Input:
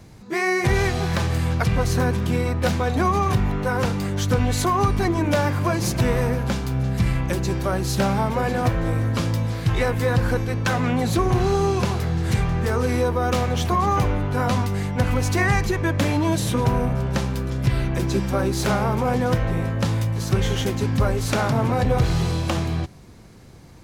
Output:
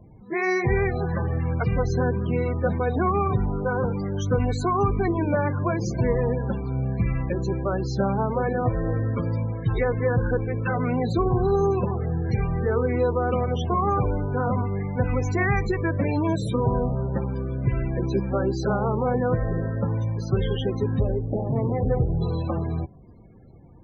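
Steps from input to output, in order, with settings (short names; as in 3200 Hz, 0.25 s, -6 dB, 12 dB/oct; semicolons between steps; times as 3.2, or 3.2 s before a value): 20.99–22.22 median filter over 41 samples; loudest bins only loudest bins 32; dynamic EQ 440 Hz, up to +6 dB, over -41 dBFS, Q 3.9; gain -3 dB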